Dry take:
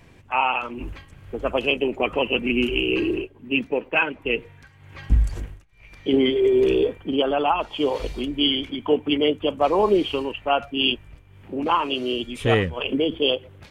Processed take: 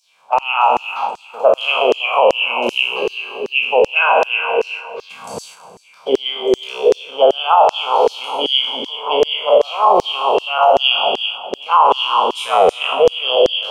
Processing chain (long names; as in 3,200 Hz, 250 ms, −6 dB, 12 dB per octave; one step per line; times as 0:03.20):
peak hold with a decay on every bin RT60 1.84 s
high-pass filter 150 Hz 24 dB per octave
spectral tilt −2.5 dB per octave
noise gate −31 dBFS, range −7 dB
downward compressor 1.5 to 1, threshold −26 dBFS, peak gain reduction 6.5 dB
phaser with its sweep stopped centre 770 Hz, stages 4
bucket-brigade delay 201 ms, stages 4,096, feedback 56%, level −15 dB
auto-filter high-pass saw down 2.6 Hz 380–5,900 Hz
boost into a limiter +14.5 dB
level −1 dB